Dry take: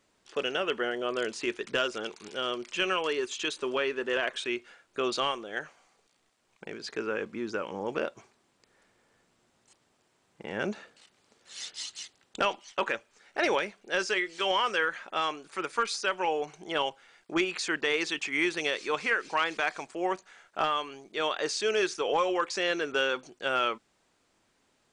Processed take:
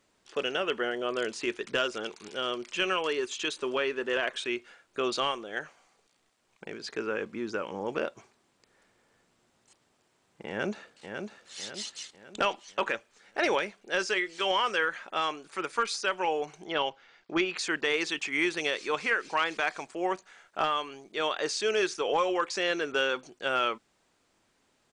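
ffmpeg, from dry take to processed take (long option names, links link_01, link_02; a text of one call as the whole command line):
ffmpeg -i in.wav -filter_complex "[0:a]asplit=2[link_01][link_02];[link_02]afade=type=in:start_time=10.48:duration=0.01,afade=type=out:start_time=11.55:duration=0.01,aecho=0:1:550|1100|1650|2200|2750:0.501187|0.225534|0.10149|0.0456707|0.0205518[link_03];[link_01][link_03]amix=inputs=2:normalize=0,asettb=1/sr,asplit=3[link_04][link_05][link_06];[link_04]atrim=end=16.664[link_07];[link_05]atrim=start=16.66:end=17.57,asetpts=PTS-STARTPTS,afade=type=in:duration=0.004:curve=qsin,afade=type=out:start_time=0.906:duration=0.004:curve=qsin,lowpass=frequency=5600:width=0.5412,lowpass=frequency=5600:width=1.3066[link_08];[link_06]atrim=start=17.566[link_09];[link_07][link_08]acrossfade=duration=0.004:curve1=hsin:curve2=qsin[link_10];[link_10][link_09]acrossfade=duration=0.004:curve1=qsin:curve2=hsin" out.wav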